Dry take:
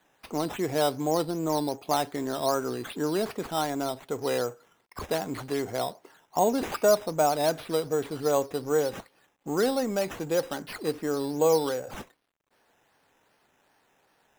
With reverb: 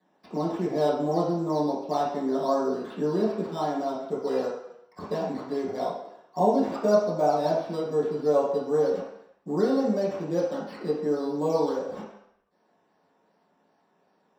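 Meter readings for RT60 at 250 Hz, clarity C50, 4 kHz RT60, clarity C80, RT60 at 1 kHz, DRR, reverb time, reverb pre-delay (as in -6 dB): 0.55 s, 2.5 dB, 0.70 s, 5.5 dB, 0.80 s, -8.5 dB, 0.75 s, 3 ms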